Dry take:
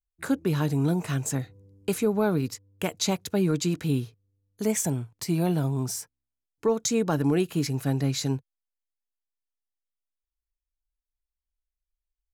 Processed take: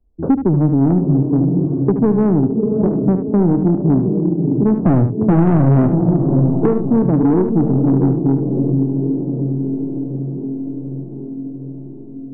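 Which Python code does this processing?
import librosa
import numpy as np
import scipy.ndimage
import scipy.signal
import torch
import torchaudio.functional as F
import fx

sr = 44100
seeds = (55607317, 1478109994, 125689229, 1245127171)

y = fx.peak_eq(x, sr, hz=270.0, db=10.5, octaves=1.8)
y = fx.leveller(y, sr, passes=5, at=(4.8, 6.66))
y = scipy.ndimage.gaussian_filter1d(y, 13.0, mode='constant')
y = fx.echo_diffused(y, sr, ms=627, feedback_pct=42, wet_db=-7.0)
y = 10.0 ** (-14.5 / 20.0) * np.tanh(y / 10.0 ** (-14.5 / 20.0))
y = y + 10.0 ** (-10.0 / 20.0) * np.pad(y, (int(74 * sr / 1000.0), 0))[:len(y)]
y = fx.band_squash(y, sr, depth_pct=70)
y = F.gain(torch.from_numpy(y), 6.5).numpy()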